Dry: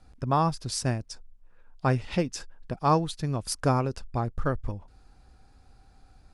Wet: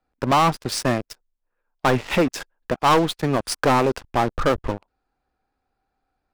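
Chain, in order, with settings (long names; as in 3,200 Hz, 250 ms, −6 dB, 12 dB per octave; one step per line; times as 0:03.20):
three-way crossover with the lows and the highs turned down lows −14 dB, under 250 Hz, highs −13 dB, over 3,200 Hz
leveller curve on the samples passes 5
level −2 dB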